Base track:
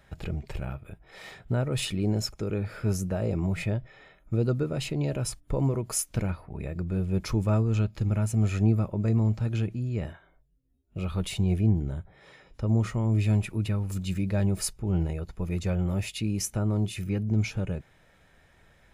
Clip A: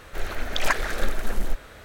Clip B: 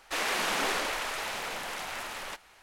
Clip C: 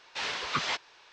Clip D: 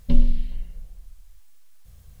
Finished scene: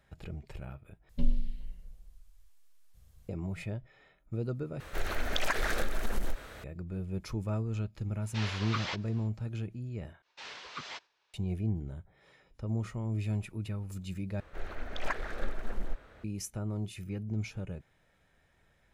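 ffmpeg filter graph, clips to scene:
-filter_complex "[1:a]asplit=2[a][b];[3:a]asplit=2[c][d];[0:a]volume=-9dB[e];[4:a]aresample=32000,aresample=44100[f];[a]acompressor=threshold=-21dB:ratio=6:attack=3.2:release=140:knee=1:detection=peak[g];[c]acrossover=split=6600[h][i];[i]acompressor=threshold=-55dB:ratio=4:attack=1:release=60[j];[h][j]amix=inputs=2:normalize=0[k];[d]agate=range=-33dB:threshold=-52dB:ratio=3:release=100:detection=peak[l];[b]lowpass=f=1.8k:p=1[m];[e]asplit=5[n][o][p][q][r];[n]atrim=end=1.094[s];[f]atrim=end=2.2,asetpts=PTS-STARTPTS,volume=-10.5dB[t];[o]atrim=start=3.286:end=4.804[u];[g]atrim=end=1.84,asetpts=PTS-STARTPTS,volume=-2dB[v];[p]atrim=start=6.636:end=10.224[w];[l]atrim=end=1.12,asetpts=PTS-STARTPTS,volume=-12dB[x];[q]atrim=start=11.336:end=14.404[y];[m]atrim=end=1.84,asetpts=PTS-STARTPTS,volume=-9dB[z];[r]atrim=start=16.236[aa];[k]atrim=end=1.12,asetpts=PTS-STARTPTS,volume=-5.5dB,afade=t=in:d=0.1,afade=t=out:st=1.02:d=0.1,adelay=8190[ab];[s][t]acrossfade=d=0.004:c1=hsin:c2=hsin[ac];[ac][u]acrossfade=d=0.004:c1=hsin:c2=hsin[ad];[ad][v]acrossfade=d=0.004:c1=hsin:c2=hsin[ae];[ae][w]acrossfade=d=0.004:c1=hsin:c2=hsin[af];[af][x]acrossfade=d=0.004:c1=hsin:c2=hsin[ag];[ag][y]acrossfade=d=0.004:c1=hsin:c2=hsin[ah];[ah][z]acrossfade=d=0.004:c1=hsin:c2=hsin[ai];[ai][aa]acrossfade=d=0.004:c1=hsin:c2=hsin[aj];[aj][ab]amix=inputs=2:normalize=0"

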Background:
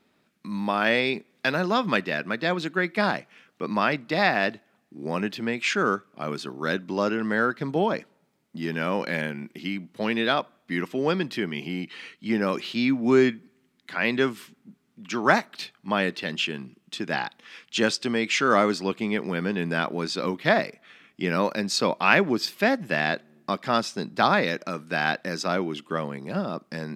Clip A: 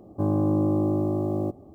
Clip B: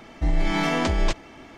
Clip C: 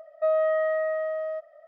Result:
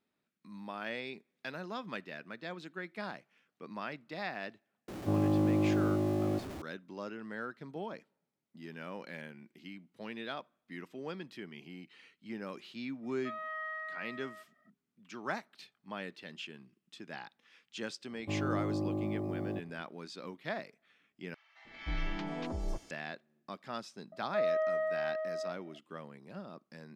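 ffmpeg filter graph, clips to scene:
-filter_complex "[1:a]asplit=2[a][b];[3:a]asplit=2[c][d];[0:a]volume=-17.5dB[e];[a]aeval=exprs='val(0)+0.5*0.0224*sgn(val(0))':c=same[f];[c]highpass=f=1.2k:w=0.5412,highpass=f=1.2k:w=1.3066[g];[2:a]acrossover=split=1100|5000[h][i][j];[h]adelay=310[k];[j]adelay=710[l];[k][i][l]amix=inputs=3:normalize=0[m];[e]asplit=2[n][o];[n]atrim=end=21.344[p];[m]atrim=end=1.57,asetpts=PTS-STARTPTS,volume=-14dB[q];[o]atrim=start=22.906[r];[f]atrim=end=1.74,asetpts=PTS-STARTPTS,volume=-6.5dB,afade=t=in:d=0.004:c=hsin,afade=t=out:st=1.736:d=0.004:c=hsin,adelay=4880[s];[g]atrim=end=1.67,asetpts=PTS-STARTPTS,volume=-4dB,afade=t=in:d=0.004:c=hsin,afade=t=out:st=1.666:d=0.004:c=hsin,adelay=13030[t];[b]atrim=end=1.74,asetpts=PTS-STARTPTS,volume=-11dB,afade=t=in:d=0.004:c=hsin,afade=t=out:st=1.736:d=0.004:c=hsin,adelay=18090[u];[d]atrim=end=1.67,asetpts=PTS-STARTPTS,volume=-7.5dB,afade=t=in:d=0.004:c=hsin,afade=t=out:st=1.666:d=0.004:c=hsin,adelay=24120[v];[p][q]acrossfade=d=0.004:c1=hsin:c2=hsin[w];[w][r]acrossfade=d=0.004:c1=hsin:c2=hsin[x];[x][s][t][u][v]amix=inputs=5:normalize=0"

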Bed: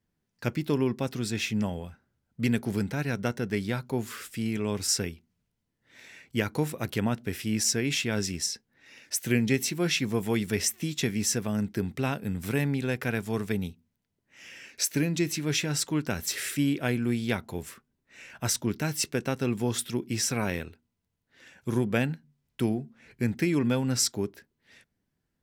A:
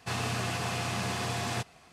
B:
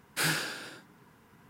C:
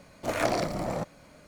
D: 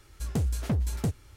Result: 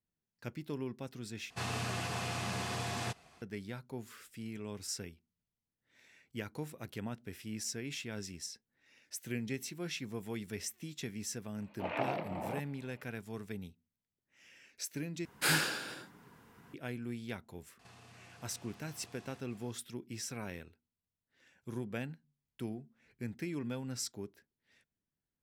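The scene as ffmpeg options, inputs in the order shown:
-filter_complex "[1:a]asplit=2[a][b];[0:a]volume=-13.5dB[c];[3:a]highpass=f=130:w=0.5412,highpass=f=130:w=1.3066,equalizer=f=870:t=q:w=4:g=8,equalizer=f=1.4k:t=q:w=4:g=-4,equalizer=f=2.7k:t=q:w=4:g=9,lowpass=f=3.2k:w=0.5412,lowpass=f=3.2k:w=1.3066[d];[b]acompressor=threshold=-49dB:ratio=6:attack=3.2:release=140:knee=1:detection=peak[e];[c]asplit=3[f][g][h];[f]atrim=end=1.504[i];[a]atrim=end=1.92,asetpts=PTS-STARTPTS,volume=-5dB[j];[g]atrim=start=3.416:end=15.254[k];[2:a]atrim=end=1.49,asetpts=PTS-STARTPTS,volume=-0.5dB[l];[h]atrim=start=16.736[m];[d]atrim=end=1.47,asetpts=PTS-STARTPTS,volume=-10dB,afade=t=in:d=0.004:c=hsin,afade=t=out:st=1.466:d=0.004:c=hsin,adelay=11560[n];[e]atrim=end=1.92,asetpts=PTS-STARTPTS,volume=-7dB,afade=t=in:d=0.004:c=hsin,afade=t=out:st=1.916:d=0.004:c=hsin,adelay=17790[o];[i][j]acrossfade=d=0.004:c1=hsin:c2=hsin[p];[p][k]acrossfade=d=0.004:c1=hsin:c2=hsin[q];[q][l]acrossfade=d=0.004:c1=hsin:c2=hsin[r];[r][m]acrossfade=d=0.004:c1=hsin:c2=hsin[s];[s][n][o]amix=inputs=3:normalize=0"

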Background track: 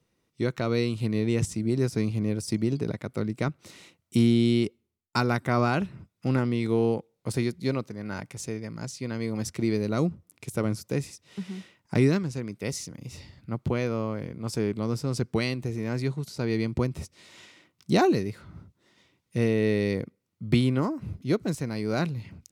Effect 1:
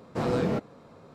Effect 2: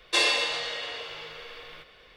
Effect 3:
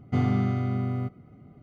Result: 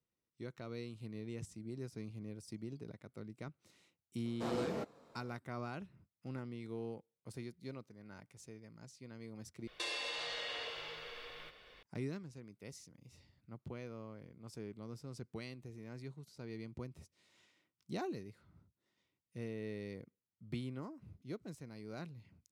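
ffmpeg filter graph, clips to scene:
-filter_complex "[0:a]volume=-19.5dB[a];[1:a]bass=f=250:g=-7,treble=f=4k:g=5[b];[2:a]acompressor=threshold=-31dB:ratio=6:attack=3.2:release=140:knee=1:detection=peak[c];[a]asplit=2[d][e];[d]atrim=end=9.674[f];[c]atrim=end=2.16,asetpts=PTS-STARTPTS,volume=-6dB[g];[e]atrim=start=11.826[h];[b]atrim=end=1.14,asetpts=PTS-STARTPTS,volume=-10dB,afade=t=in:d=0.004:c=hsin,afade=t=out:st=1.136:d=0.004:c=hsin,adelay=187425S[i];[f][g]acrossfade=d=0.004:c1=hsin:c2=hsin[j];[j][h]acrossfade=d=0.004:c1=hsin:c2=hsin[k];[k][i]amix=inputs=2:normalize=0"

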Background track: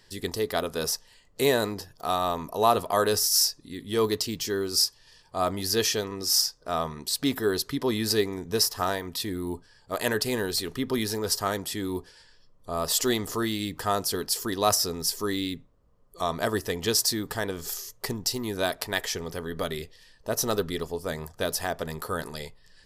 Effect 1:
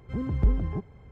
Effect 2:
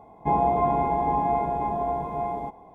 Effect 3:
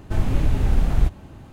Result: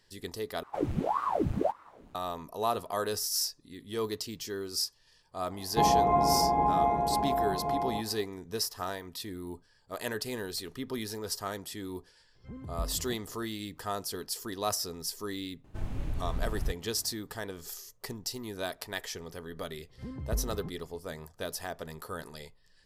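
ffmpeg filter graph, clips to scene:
-filter_complex "[3:a]asplit=2[a][b];[1:a]asplit=2[c][d];[0:a]volume=-8.5dB[e];[a]aeval=exprs='val(0)*sin(2*PI*620*n/s+620*0.9/1.7*sin(2*PI*1.7*n/s))':c=same[f];[e]asplit=2[g][h];[g]atrim=end=0.634[i];[f]atrim=end=1.52,asetpts=PTS-STARTPTS,volume=-10dB[j];[h]atrim=start=2.146[k];[2:a]atrim=end=2.74,asetpts=PTS-STARTPTS,volume=-2dB,afade=t=in:d=0.004:c=hsin,afade=t=out:st=2.736:d=0.004:c=hsin,adelay=5510[l];[c]atrim=end=1.11,asetpts=PTS-STARTPTS,volume=-13.5dB,afade=t=in:d=0.004:c=hsin,afade=t=out:st=1.106:d=0.004:c=hsin,adelay=12350[m];[b]atrim=end=1.52,asetpts=PTS-STARTPTS,volume=-14.5dB,afade=t=in:d=0.004:c=hsin,afade=t=out:st=1.516:d=0.004:c=hsin,adelay=15640[n];[d]atrim=end=1.11,asetpts=PTS-STARTPTS,volume=-10.5dB,afade=t=in:d=0.004:c=hsin,afade=t=out:st=1.106:d=0.004:c=hsin,adelay=19890[o];[i][j]acrossfade=d=0.004:c1=hsin:c2=hsin[p];[p][k]acrossfade=d=0.004:c1=hsin:c2=hsin[q];[q][l][m][n][o]amix=inputs=5:normalize=0"

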